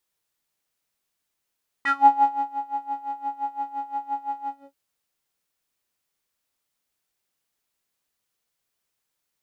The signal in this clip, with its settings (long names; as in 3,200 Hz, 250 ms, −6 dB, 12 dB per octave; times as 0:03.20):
subtractive patch with tremolo C#4, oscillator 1 square, interval 0 semitones, detune 15 cents, oscillator 2 level −8.5 dB, sub −27 dB, filter bandpass, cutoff 480 Hz, Q 11, filter envelope 2 octaves, filter decay 0.17 s, filter sustain 40%, attack 3.3 ms, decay 0.63 s, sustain −17 dB, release 0.26 s, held 2.63 s, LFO 5.8 Hz, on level 18 dB